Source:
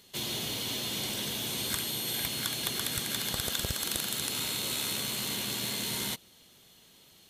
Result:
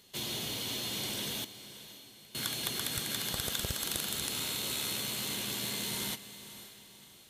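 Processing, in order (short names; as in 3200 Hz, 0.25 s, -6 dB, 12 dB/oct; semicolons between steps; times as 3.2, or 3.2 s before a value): 1.43–2.35 flipped gate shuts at -25 dBFS, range -27 dB; diffused feedback echo 0.542 s, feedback 43%, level -13.5 dB; gain -2.5 dB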